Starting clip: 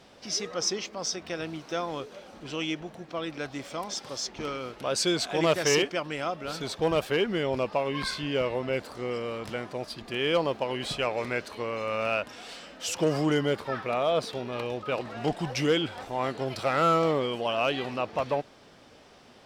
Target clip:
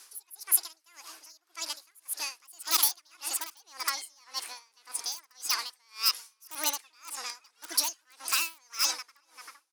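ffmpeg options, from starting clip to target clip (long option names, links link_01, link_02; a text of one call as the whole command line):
ffmpeg -i in.wav -filter_complex "[0:a]highpass=150,equalizer=frequency=160:width_type=q:width=4:gain=9,equalizer=frequency=310:width_type=q:width=4:gain=-5,equalizer=frequency=1600:width_type=q:width=4:gain=-3,equalizer=frequency=2500:width_type=q:width=4:gain=4,equalizer=frequency=3700:width_type=q:width=4:gain=-5,lowpass=frequency=6100:width=0.5412,lowpass=frequency=6100:width=1.3066,asplit=2[link_01][link_02];[link_02]adelay=782,lowpass=frequency=940:poles=1,volume=-11.5dB,asplit=2[link_03][link_04];[link_04]adelay=782,lowpass=frequency=940:poles=1,volume=0.33,asplit=2[link_05][link_06];[link_06]adelay=782,lowpass=frequency=940:poles=1,volume=0.33[link_07];[link_03][link_05][link_07]amix=inputs=3:normalize=0[link_08];[link_01][link_08]amix=inputs=2:normalize=0,asetrate=88200,aresample=44100,asplit=2[link_09][link_10];[link_10]aeval=exprs='(mod(6.31*val(0)+1,2)-1)/6.31':channel_layout=same,volume=-6dB[link_11];[link_09][link_11]amix=inputs=2:normalize=0,aeval=exprs='0.251*(cos(1*acos(clip(val(0)/0.251,-1,1)))-cos(1*PI/2))+0.0224*(cos(2*acos(clip(val(0)/0.251,-1,1)))-cos(2*PI/2))+0.0126*(cos(6*acos(clip(val(0)/0.251,-1,1)))-cos(6*PI/2))':channel_layout=same,aderivative,aeval=exprs='val(0)*pow(10,-32*(0.5-0.5*cos(2*PI*1.8*n/s))/20)':channel_layout=same,volume=6.5dB" out.wav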